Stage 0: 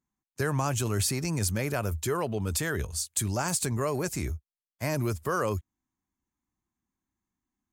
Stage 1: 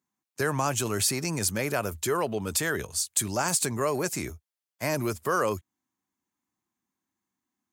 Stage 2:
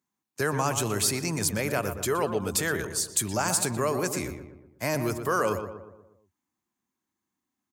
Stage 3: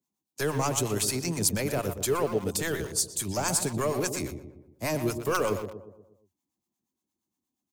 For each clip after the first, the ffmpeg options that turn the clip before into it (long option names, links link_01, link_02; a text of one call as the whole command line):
ffmpeg -i in.wav -af "highpass=93,lowshelf=frequency=140:gain=-11.5,volume=3.5dB" out.wav
ffmpeg -i in.wav -filter_complex "[0:a]asplit=2[link_01][link_02];[link_02]adelay=120,lowpass=frequency=1700:poles=1,volume=-7.5dB,asplit=2[link_03][link_04];[link_04]adelay=120,lowpass=frequency=1700:poles=1,volume=0.51,asplit=2[link_05][link_06];[link_06]adelay=120,lowpass=frequency=1700:poles=1,volume=0.51,asplit=2[link_07][link_08];[link_08]adelay=120,lowpass=frequency=1700:poles=1,volume=0.51,asplit=2[link_09][link_10];[link_10]adelay=120,lowpass=frequency=1700:poles=1,volume=0.51,asplit=2[link_11][link_12];[link_12]adelay=120,lowpass=frequency=1700:poles=1,volume=0.51[link_13];[link_01][link_03][link_05][link_07][link_09][link_11][link_13]amix=inputs=7:normalize=0" out.wav
ffmpeg -i in.wav -filter_complex "[0:a]acrossover=split=630[link_01][link_02];[link_01]aeval=exprs='val(0)*(1-0.7/2+0.7/2*cos(2*PI*8.5*n/s))':channel_layout=same[link_03];[link_02]aeval=exprs='val(0)*(1-0.7/2-0.7/2*cos(2*PI*8.5*n/s))':channel_layout=same[link_04];[link_03][link_04]amix=inputs=2:normalize=0,acrossover=split=130|1000|2500[link_05][link_06][link_07][link_08];[link_07]acrusher=bits=5:dc=4:mix=0:aa=0.000001[link_09];[link_05][link_06][link_09][link_08]amix=inputs=4:normalize=0,volume=3dB" out.wav